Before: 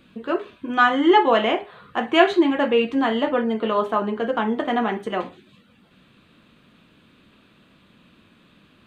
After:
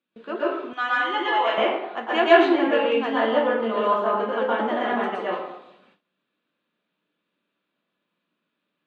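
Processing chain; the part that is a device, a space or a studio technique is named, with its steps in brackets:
supermarket ceiling speaker (band-pass filter 290–6,100 Hz; convolution reverb RT60 0.85 s, pre-delay 112 ms, DRR −6.5 dB)
noise gate with hold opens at −38 dBFS
0:00.73–0:01.58: high-pass filter 1,400 Hz 6 dB per octave
level −7 dB

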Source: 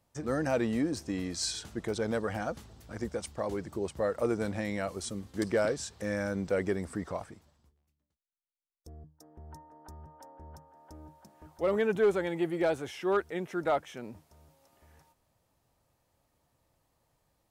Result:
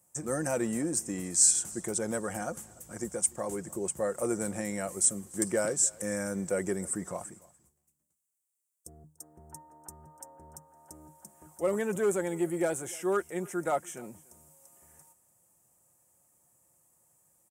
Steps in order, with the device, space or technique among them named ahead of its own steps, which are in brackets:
budget condenser microphone (high-pass filter 87 Hz; high shelf with overshoot 5,800 Hz +12.5 dB, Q 3)
comb filter 5.6 ms, depth 32%
single-tap delay 292 ms −23.5 dB
level −1.5 dB

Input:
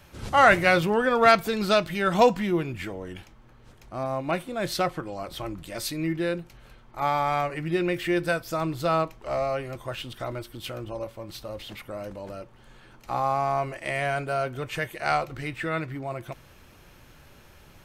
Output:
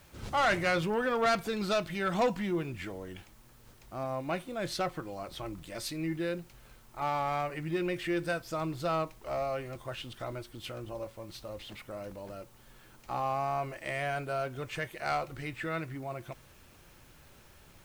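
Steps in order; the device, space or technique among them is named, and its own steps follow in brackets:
compact cassette (soft clipping −16 dBFS, distortion −12 dB; low-pass filter 11,000 Hz; tape wow and flutter 25 cents; white noise bed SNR 30 dB)
level −5.5 dB

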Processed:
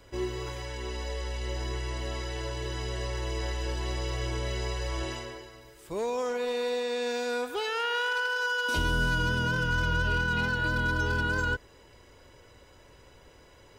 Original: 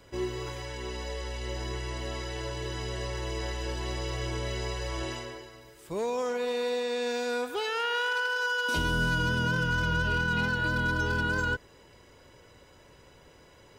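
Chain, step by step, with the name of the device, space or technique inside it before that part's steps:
low shelf boost with a cut just above (low-shelf EQ 61 Hz +6.5 dB; parametric band 170 Hz −4 dB 0.79 octaves)

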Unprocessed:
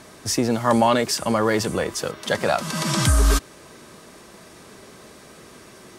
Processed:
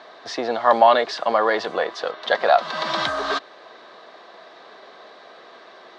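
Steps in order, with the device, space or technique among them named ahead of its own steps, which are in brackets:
phone earpiece (loudspeaker in its box 470–4,100 Hz, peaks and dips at 490 Hz +3 dB, 710 Hz +10 dB, 1,100 Hz +4 dB, 1,700 Hz +4 dB, 2,500 Hz −4 dB, 3,900 Hz +7 dB)

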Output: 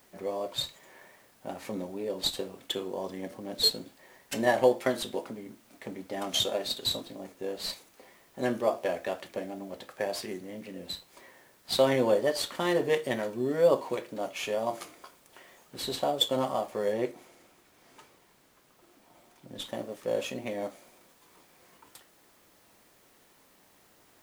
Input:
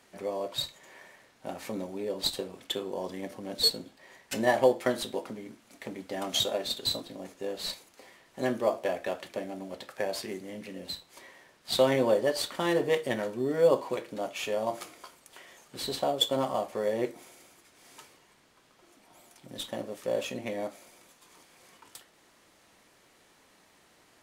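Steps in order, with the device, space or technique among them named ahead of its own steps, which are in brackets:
plain cassette with noise reduction switched in (one half of a high-frequency compander decoder only; tape wow and flutter; white noise bed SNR 32 dB)
0:16.92–0:19.66: high-shelf EQ 6,200 Hz −4.5 dB

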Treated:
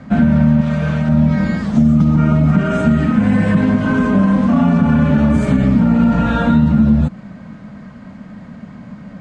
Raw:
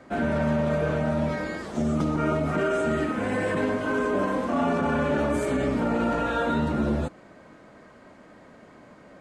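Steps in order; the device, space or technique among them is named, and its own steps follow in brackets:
jukebox (low-pass filter 6,400 Hz 12 dB per octave; low shelf with overshoot 270 Hz +9.5 dB, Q 3; downward compressor 4 to 1, threshold −17 dBFS, peak gain reduction 7 dB)
0:00.61–0:01.09: tilt shelving filter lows −5.5 dB
level +8 dB

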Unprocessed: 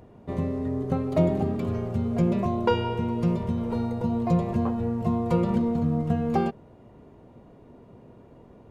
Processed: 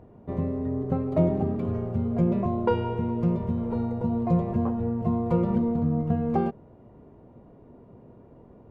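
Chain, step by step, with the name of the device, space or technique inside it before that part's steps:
through cloth (high-shelf EQ 2,700 Hz −17.5 dB)

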